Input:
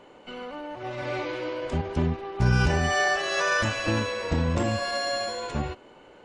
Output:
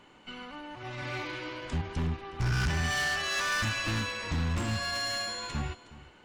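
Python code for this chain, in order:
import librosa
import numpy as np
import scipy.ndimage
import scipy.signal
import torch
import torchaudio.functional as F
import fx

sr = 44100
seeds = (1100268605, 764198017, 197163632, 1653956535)

p1 = np.clip(10.0 ** (24.0 / 20.0) * x, -1.0, 1.0) / 10.0 ** (24.0 / 20.0)
p2 = fx.peak_eq(p1, sr, hz=520.0, db=-13.0, octaves=1.3)
y = p2 + fx.echo_single(p2, sr, ms=365, db=-18.0, dry=0)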